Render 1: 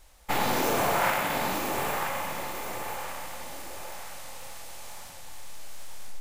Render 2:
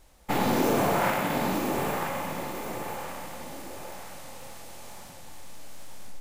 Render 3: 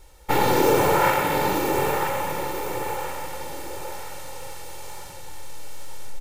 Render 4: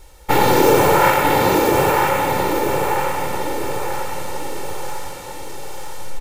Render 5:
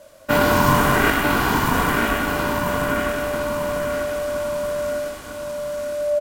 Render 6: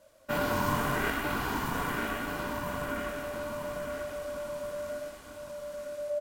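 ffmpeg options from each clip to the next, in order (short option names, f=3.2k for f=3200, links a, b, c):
-af "equalizer=f=220:w=0.5:g=10.5,volume=-3dB"
-filter_complex "[0:a]aecho=1:1:2.2:0.73,acrossover=split=5500[a][b];[b]volume=31dB,asoftclip=hard,volume=-31dB[c];[a][c]amix=inputs=2:normalize=0,volume=4dB"
-filter_complex "[0:a]asplit=2[a][b];[b]adelay=946,lowpass=f=4.2k:p=1,volume=-5.5dB,asplit=2[c][d];[d]adelay=946,lowpass=f=4.2k:p=1,volume=0.47,asplit=2[e][f];[f]adelay=946,lowpass=f=4.2k:p=1,volume=0.47,asplit=2[g][h];[h]adelay=946,lowpass=f=4.2k:p=1,volume=0.47,asplit=2[i][j];[j]adelay=946,lowpass=f=4.2k:p=1,volume=0.47,asplit=2[k][l];[l]adelay=946,lowpass=f=4.2k:p=1,volume=0.47[m];[a][c][e][g][i][k][m]amix=inputs=7:normalize=0,volume=5.5dB"
-filter_complex "[0:a]aeval=exprs='val(0)*sin(2*PI*590*n/s)':c=same,asplit=2[a][b];[b]adelay=22,volume=-10.5dB[c];[a][c]amix=inputs=2:normalize=0,volume=-1dB"
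-af "flanger=delay=0.7:depth=9.8:regen=-57:speed=0.73:shape=triangular,volume=-8.5dB"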